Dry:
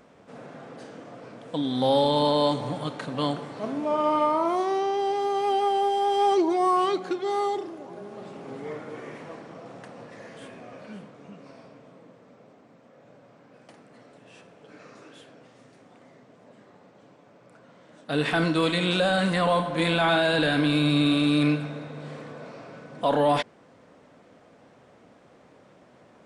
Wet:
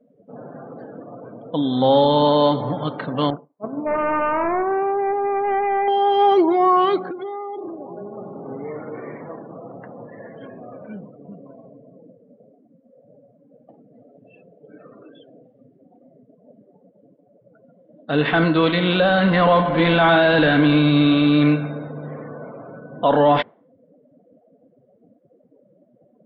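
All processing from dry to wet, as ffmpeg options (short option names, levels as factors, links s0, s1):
-filter_complex "[0:a]asettb=1/sr,asplit=3[s0][s1][s2];[s0]atrim=end=3.304[s3];[s1]atrim=start=3.3:end=5.88,asetpts=PTS-STARTPTS,afade=t=in:d=0.004:c=qsin,afade=t=out:st=2.576:d=0.004:c=qsin,agate=range=0.0224:threshold=0.0501:ratio=3:release=100:detection=peak,asoftclip=type=hard:threshold=0.0668,asuperstop=centerf=4500:order=8:qfactor=0.94[s4];[s2]atrim=start=5.876[s5];[s3][s4]acrossfade=d=0.004:c1=hsin:c2=qsin[s6];[s6][s5]acrossfade=d=0.004:c1=qsin:c2=hsin,asettb=1/sr,asplit=3[s7][s8][s9];[s7]atrim=end=7.084[s10];[s8]atrim=start=7.08:end=10.82,asetpts=PTS-STARTPTS,afade=t=in:d=0.004:c=qsin,afade=t=out:st=3.736:d=0.004:c=qsin,acompressor=threshold=0.0251:ratio=16:attack=3.2:release=140:knee=1:detection=peak,highpass=48,highshelf=f=5900:g=-9.5[s11];[s9]atrim=start=10.816[s12];[s10][s11]acrossfade=d=0.004:c1=hsin:c2=qsin[s13];[s13][s12]acrossfade=d=0.004:c1=qsin:c2=hsin,asettb=1/sr,asplit=3[s14][s15][s16];[s14]atrim=end=19.244[s17];[s15]atrim=start=19.24:end=20.81,asetpts=PTS-STARTPTS,afade=t=in:d=0.004:c=qsin,afade=t=out:st=1.566:d=0.004:c=qsin,aeval=exprs='val(0)+0.5*0.0299*sgn(val(0))':c=same,highshelf=f=4000:g=-2.5[s18];[s16]atrim=start=20.806[s19];[s17][s18]acrossfade=d=0.004:c1=hsin:c2=qsin[s20];[s20][s19]acrossfade=d=0.004:c1=qsin:c2=hsin,afftdn=nr=34:nf=-44,lowpass=f=3500:w=0.5412,lowpass=f=3500:w=1.3066,bandreject=f=2500:w=15,volume=2.11"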